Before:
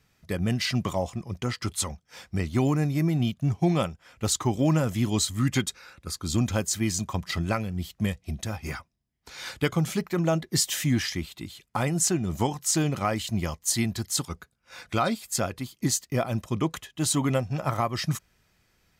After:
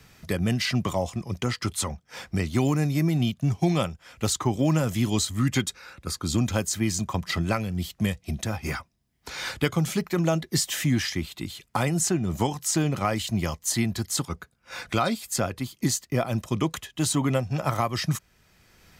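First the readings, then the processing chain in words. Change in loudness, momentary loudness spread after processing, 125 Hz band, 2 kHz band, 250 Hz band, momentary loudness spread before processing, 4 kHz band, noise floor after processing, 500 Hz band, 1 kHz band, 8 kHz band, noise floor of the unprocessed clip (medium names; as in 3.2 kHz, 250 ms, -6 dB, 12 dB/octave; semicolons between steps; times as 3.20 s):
+0.5 dB, 8 LU, +1.0 dB, +2.0 dB, +1.0 dB, 10 LU, +1.0 dB, -66 dBFS, +1.0 dB, +1.0 dB, -0.5 dB, -71 dBFS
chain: three bands compressed up and down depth 40%; trim +1 dB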